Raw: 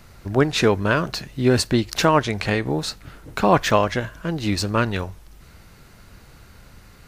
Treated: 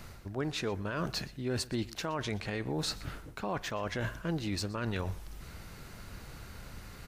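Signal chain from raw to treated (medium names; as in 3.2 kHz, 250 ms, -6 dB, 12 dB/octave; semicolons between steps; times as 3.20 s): reverse; compression 16:1, threshold -29 dBFS, peak gain reduction 19 dB; reverse; peak limiter -24 dBFS, peak gain reduction 7 dB; delay 121 ms -20.5 dB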